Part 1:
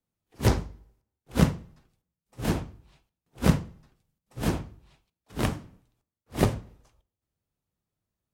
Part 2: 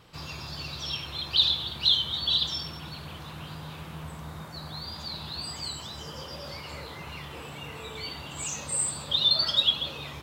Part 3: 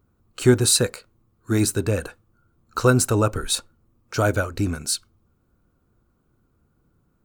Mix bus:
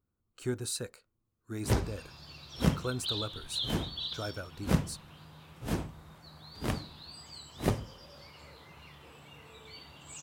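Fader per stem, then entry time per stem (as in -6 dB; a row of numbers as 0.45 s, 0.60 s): -6.0 dB, -12.5 dB, -18.0 dB; 1.25 s, 1.70 s, 0.00 s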